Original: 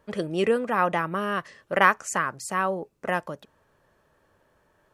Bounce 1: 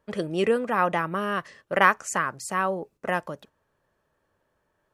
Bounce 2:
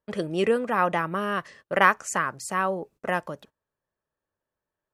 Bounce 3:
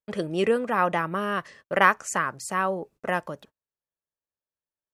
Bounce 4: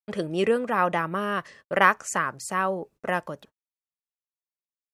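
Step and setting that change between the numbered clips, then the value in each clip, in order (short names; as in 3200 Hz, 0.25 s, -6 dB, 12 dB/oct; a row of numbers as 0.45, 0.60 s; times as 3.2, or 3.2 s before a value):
gate, range: -8, -23, -37, -58 dB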